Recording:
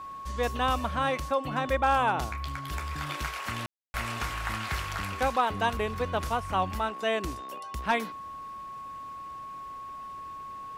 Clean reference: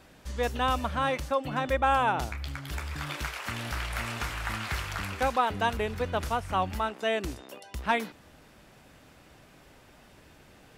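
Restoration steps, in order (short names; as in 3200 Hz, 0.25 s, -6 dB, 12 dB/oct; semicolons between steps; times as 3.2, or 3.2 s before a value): clip repair -15.5 dBFS; notch 1100 Hz, Q 30; room tone fill 3.66–3.94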